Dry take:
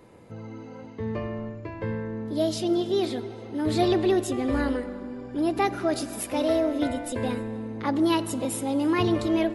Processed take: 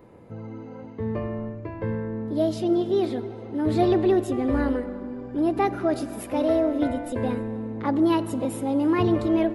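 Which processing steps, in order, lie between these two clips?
peaking EQ 6.9 kHz -11.5 dB 2.9 oct; trim +2.5 dB

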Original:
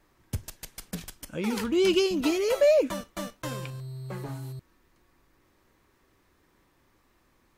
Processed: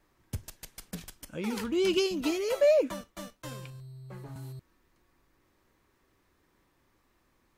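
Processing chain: 1.97–4.36 s: three bands expanded up and down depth 40%; trim -4 dB

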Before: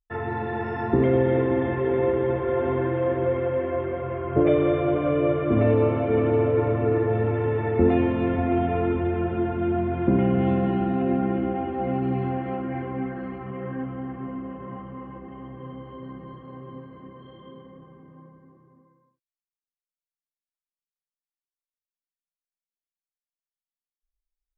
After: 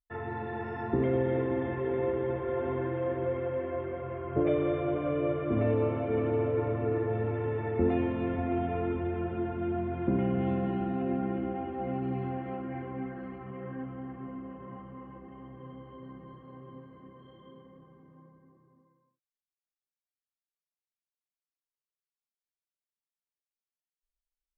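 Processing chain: low-pass 5.4 kHz 12 dB/octave; trim -7.5 dB

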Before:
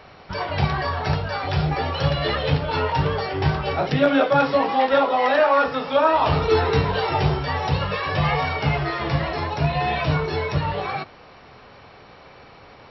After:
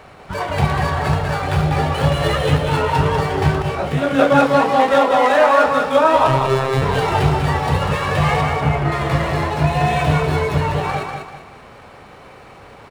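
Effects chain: median filter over 9 samples; 6.27–6.82 s: robot voice 133 Hz; 8.41–8.92 s: treble shelf 2.6 kHz -11 dB; on a send: feedback delay 194 ms, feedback 35%, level -5 dB; 3.62–4.19 s: on the sum: detune thickener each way 35 cents; trim +4 dB

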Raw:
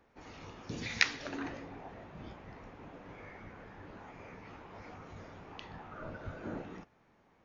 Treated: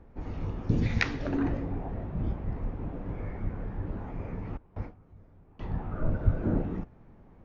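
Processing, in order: 4.57–5.63 s: gate with hold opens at -38 dBFS; tilt EQ -4.5 dB/octave; trim +4 dB

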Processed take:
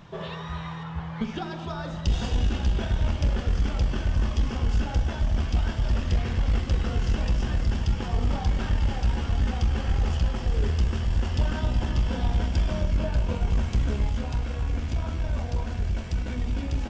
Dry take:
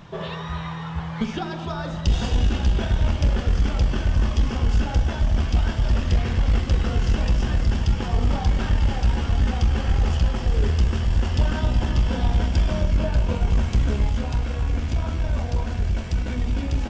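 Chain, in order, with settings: 0.83–1.36 s: treble shelf 4.8 kHz -8 dB; trim -4 dB

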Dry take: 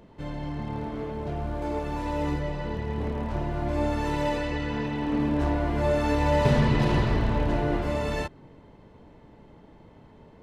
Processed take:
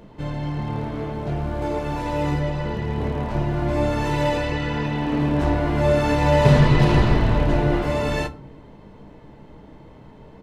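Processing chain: doubling 15 ms -13 dB; simulated room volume 250 m³, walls furnished, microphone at 0.52 m; trim +5.5 dB

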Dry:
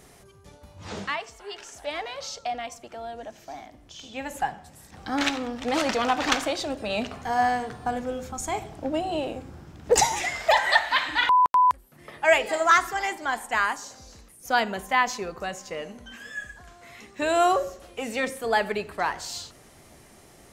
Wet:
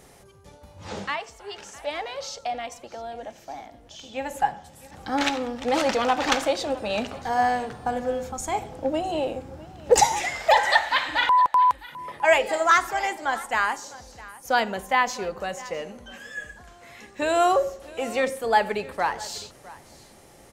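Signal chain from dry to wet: small resonant body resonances 530/830 Hz, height 7 dB; on a send: delay 658 ms -19.5 dB

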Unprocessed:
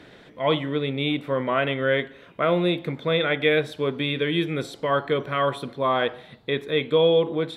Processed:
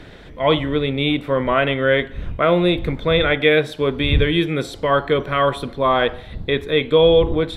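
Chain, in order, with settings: wind noise 81 Hz -35 dBFS; trim +5.5 dB

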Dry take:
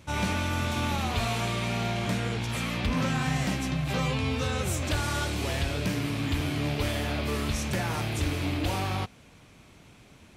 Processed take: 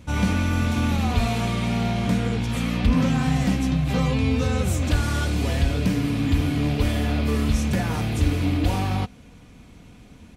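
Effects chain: bass shelf 330 Hz +10.5 dB; comb 4.1 ms, depth 38%

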